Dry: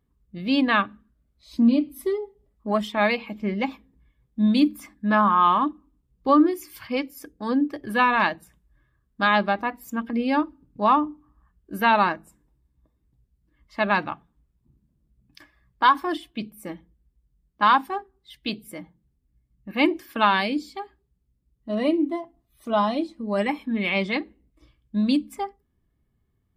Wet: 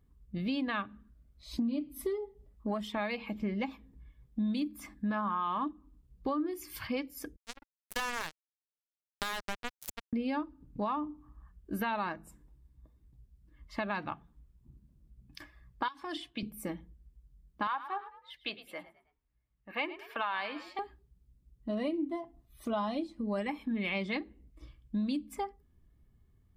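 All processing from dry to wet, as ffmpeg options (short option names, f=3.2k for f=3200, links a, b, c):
-filter_complex "[0:a]asettb=1/sr,asplit=3[a][b][c];[a]atrim=end=7.364[d];[b]atrim=start=7.36:end=10.13,asetpts=PTS-STARTPTS,afade=t=in:d=0.004:c=qsin,afade=t=out:st=2.766:d=0.004:c=qsin,aemphasis=mode=production:type=riaa,acrusher=bits=2:mix=0:aa=0.5[e];[c]atrim=start=10.126[f];[d][e]acrossfade=d=0.004:c1=hsin:c2=qsin[g];[g][f]acrossfade=d=0.004:c1=qsin:c2=hsin,asettb=1/sr,asplit=3[h][i][j];[h]atrim=end=15.884[k];[i]atrim=start=15.88:end=16.43,asetpts=PTS-STARTPTS,afade=t=in:d=0.004:c=qsin,afade=t=out:st=0.546:d=0.004:c=qsin,equalizer=f=190:w=0.47:g=-5.5,acrossover=split=140|3000[l][m][n];[m]acompressor=threshold=-33dB:ratio=6:attack=3.2:release=140:knee=2.83:detection=peak[o];[l][o][n]amix=inputs=3:normalize=0,highpass=100,lowpass=7.2k[p];[j]atrim=start=16.426[q];[k][p]acrossfade=d=0.004:c1=hsin:c2=qsin[r];[r][q]acrossfade=d=0.004:c1=qsin:c2=hsin,asettb=1/sr,asplit=3[s][t][u];[s]atrim=end=17.674[v];[t]atrim=start=17.67:end=20.79,asetpts=PTS-STARTPTS,afade=t=in:d=0.004:c=qsin,afade=t=out:st=3.116:d=0.004:c=qsin,acrossover=split=510 3500:gain=0.1 1 0.178[w][x][y];[w][x][y]amix=inputs=3:normalize=0,asplit=4[z][aa][ab][ac];[aa]adelay=106,afreqshift=41,volume=-17dB[ad];[ab]adelay=212,afreqshift=82,volume=-25.4dB[ae];[ac]adelay=318,afreqshift=123,volume=-33.8dB[af];[z][ad][ae][af]amix=inputs=4:normalize=0,atrim=end_sample=137592[ag];[u]atrim=start=20.786[ah];[v][ag]acrossfade=d=0.004:c1=hsin:c2=qsin[ai];[ai][ah]acrossfade=d=0.004:c1=qsin:c2=hsin,lowshelf=f=93:g=9.5,alimiter=limit=-13dB:level=0:latency=1:release=177,acompressor=threshold=-34dB:ratio=3"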